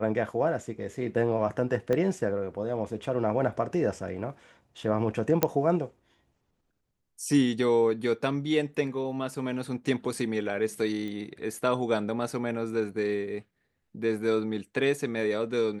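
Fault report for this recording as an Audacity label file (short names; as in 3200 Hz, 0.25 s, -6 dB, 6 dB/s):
1.930000	1.930000	pop -16 dBFS
5.430000	5.430000	pop -7 dBFS
11.080000	11.080000	pop -26 dBFS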